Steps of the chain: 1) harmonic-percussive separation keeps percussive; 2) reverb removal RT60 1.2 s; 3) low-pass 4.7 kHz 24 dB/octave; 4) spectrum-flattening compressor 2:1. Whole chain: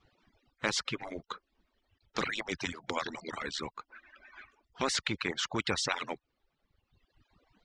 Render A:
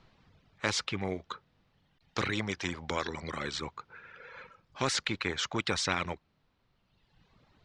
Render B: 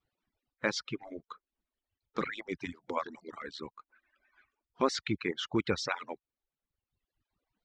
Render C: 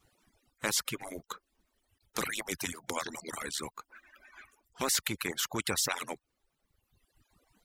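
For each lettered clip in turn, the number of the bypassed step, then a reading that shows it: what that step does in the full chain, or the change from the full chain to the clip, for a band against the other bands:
1, 125 Hz band +5.0 dB; 4, 8 kHz band -7.0 dB; 3, 8 kHz band +8.5 dB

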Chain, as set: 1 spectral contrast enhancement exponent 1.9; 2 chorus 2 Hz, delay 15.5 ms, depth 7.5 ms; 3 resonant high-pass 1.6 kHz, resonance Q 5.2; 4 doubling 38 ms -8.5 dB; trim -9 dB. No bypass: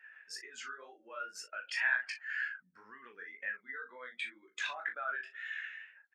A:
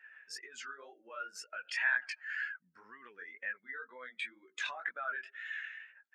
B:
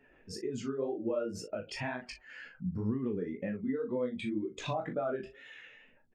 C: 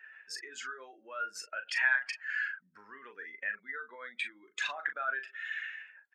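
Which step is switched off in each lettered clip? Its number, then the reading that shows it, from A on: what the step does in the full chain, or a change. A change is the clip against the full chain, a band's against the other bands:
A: 4, crest factor change -2.0 dB; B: 3, 250 Hz band +31.0 dB; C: 2, loudness change +3.5 LU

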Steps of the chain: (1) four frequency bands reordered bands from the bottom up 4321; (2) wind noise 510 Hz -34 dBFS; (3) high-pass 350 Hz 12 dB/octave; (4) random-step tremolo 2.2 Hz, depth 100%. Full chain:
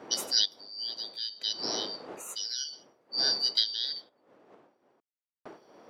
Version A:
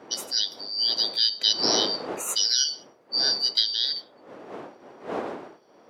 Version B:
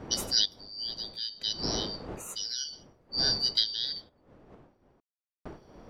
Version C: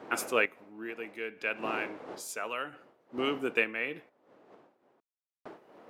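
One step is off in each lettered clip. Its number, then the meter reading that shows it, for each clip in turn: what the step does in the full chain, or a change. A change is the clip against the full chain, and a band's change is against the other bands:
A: 4, momentary loudness spread change +4 LU; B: 3, 250 Hz band +6.0 dB; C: 1, 4 kHz band -26.0 dB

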